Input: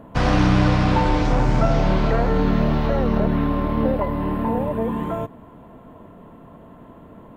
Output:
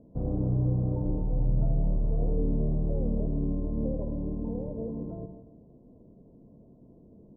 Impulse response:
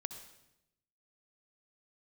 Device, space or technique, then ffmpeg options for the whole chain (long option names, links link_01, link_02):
next room: -filter_complex "[0:a]lowpass=frequency=520:width=0.5412,lowpass=frequency=520:width=1.3066[link_01];[1:a]atrim=start_sample=2205[link_02];[link_01][link_02]afir=irnorm=-1:irlink=0,asettb=1/sr,asplit=3[link_03][link_04][link_05];[link_03]atrim=end=1.214[link_06];[link_04]atrim=start=1.21:end=2.2,asetpts=PTS-STARTPTS,afade=type=in:duration=0.004:curve=qsin,afade=type=out:start_time=0.986:duration=0.004:curve=qsin,equalizer=frequency=350:width=0.96:gain=-6[link_07];[link_05]atrim=start=2.196[link_08];[link_06][link_07]acrossfade=duration=0.004:curve1=hsin:curve2=qsin[link_09];[link_09][link_08]acrossfade=duration=0.004:curve1=qsin:curve2=hsin,volume=-8dB"